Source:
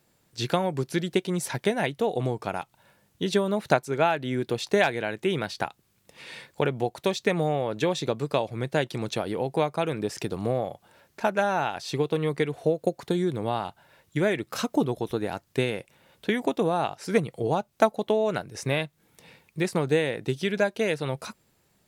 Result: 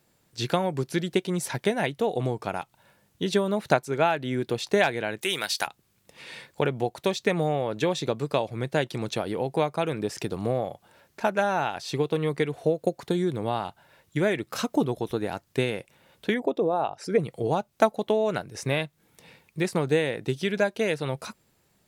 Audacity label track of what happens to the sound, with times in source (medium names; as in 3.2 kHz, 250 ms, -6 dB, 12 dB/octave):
5.210000	5.670000	tilt EQ +4.5 dB/octave
16.340000	17.200000	resonances exaggerated exponent 1.5